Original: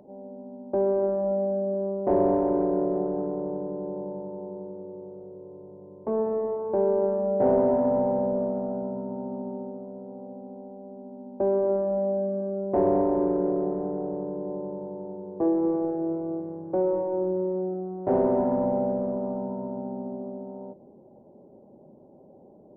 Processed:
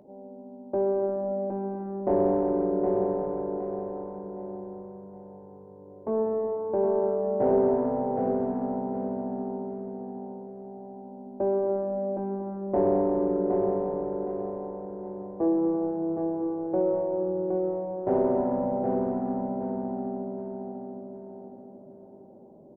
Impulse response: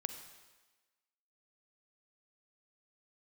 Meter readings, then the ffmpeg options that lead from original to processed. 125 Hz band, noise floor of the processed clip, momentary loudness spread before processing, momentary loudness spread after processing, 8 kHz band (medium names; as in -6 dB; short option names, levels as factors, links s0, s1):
-1.5 dB, -48 dBFS, 18 LU, 18 LU, no reading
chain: -filter_complex "[0:a]aecho=1:1:766|1532|2298|3064|3830:0.596|0.22|0.0815|0.0302|0.0112,asplit=2[s0][s1];[1:a]atrim=start_sample=2205,adelay=18[s2];[s1][s2]afir=irnorm=-1:irlink=0,volume=0.211[s3];[s0][s3]amix=inputs=2:normalize=0,volume=0.794"